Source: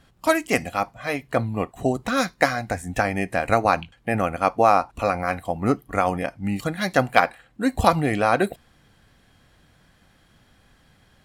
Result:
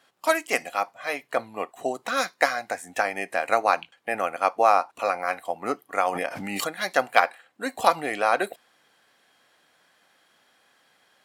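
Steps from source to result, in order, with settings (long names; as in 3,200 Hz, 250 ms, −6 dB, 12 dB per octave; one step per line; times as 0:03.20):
high-pass filter 490 Hz 12 dB per octave
0:06.07–0:06.68: background raised ahead of every attack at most 24 dB per second
level −1 dB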